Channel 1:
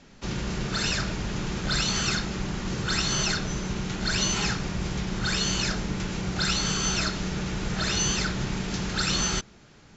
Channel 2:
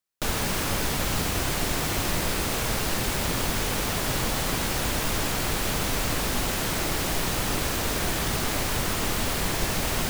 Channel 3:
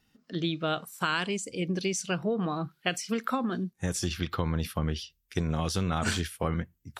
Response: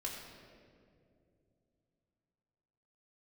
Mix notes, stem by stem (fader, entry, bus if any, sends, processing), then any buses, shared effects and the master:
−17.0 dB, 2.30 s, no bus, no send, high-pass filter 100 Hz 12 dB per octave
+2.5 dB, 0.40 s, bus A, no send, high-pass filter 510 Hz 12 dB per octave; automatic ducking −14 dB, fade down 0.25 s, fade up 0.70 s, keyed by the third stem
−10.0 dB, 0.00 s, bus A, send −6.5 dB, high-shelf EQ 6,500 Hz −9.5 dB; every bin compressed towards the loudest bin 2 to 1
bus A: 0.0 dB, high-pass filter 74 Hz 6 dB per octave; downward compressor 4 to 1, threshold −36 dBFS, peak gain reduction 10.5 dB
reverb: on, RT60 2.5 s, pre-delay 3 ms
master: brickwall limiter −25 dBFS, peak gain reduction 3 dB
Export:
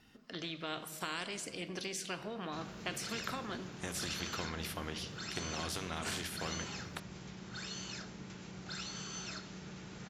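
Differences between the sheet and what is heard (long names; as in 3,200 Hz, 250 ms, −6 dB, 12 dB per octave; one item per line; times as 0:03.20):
stem 2: muted
master: missing brickwall limiter −25 dBFS, peak gain reduction 3 dB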